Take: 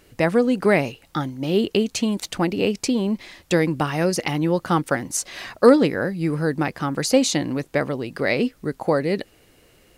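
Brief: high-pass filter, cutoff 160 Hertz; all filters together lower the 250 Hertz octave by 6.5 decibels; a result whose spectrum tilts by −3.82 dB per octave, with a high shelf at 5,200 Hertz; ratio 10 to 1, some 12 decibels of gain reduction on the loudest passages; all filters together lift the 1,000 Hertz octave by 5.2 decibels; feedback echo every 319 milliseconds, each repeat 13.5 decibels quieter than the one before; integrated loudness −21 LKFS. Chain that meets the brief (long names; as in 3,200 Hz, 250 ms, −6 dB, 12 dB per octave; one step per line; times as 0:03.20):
high-pass filter 160 Hz
parametric band 250 Hz −8 dB
parametric band 1,000 Hz +7.5 dB
high-shelf EQ 5,200 Hz −3 dB
downward compressor 10 to 1, threshold −19 dBFS
repeating echo 319 ms, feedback 21%, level −13.5 dB
level +5.5 dB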